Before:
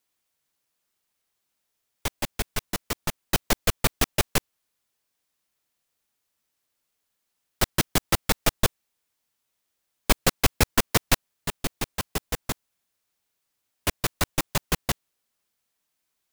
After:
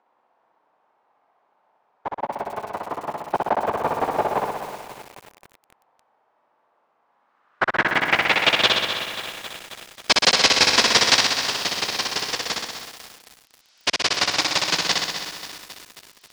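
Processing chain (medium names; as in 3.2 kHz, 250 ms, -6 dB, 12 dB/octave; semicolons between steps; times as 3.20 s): frequency weighting A; gate -32 dBFS, range -29 dB; upward compressor, threshold -33 dBFS; low-pass sweep 870 Hz -> 5.1 kHz, 7.04–8.99 s; dynamic bell 1.3 kHz, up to -4 dB, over -44 dBFS, Q 6.4; flutter echo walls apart 10.7 m, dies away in 1.3 s; bit-crushed delay 269 ms, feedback 80%, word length 6-bit, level -11.5 dB; trim +4 dB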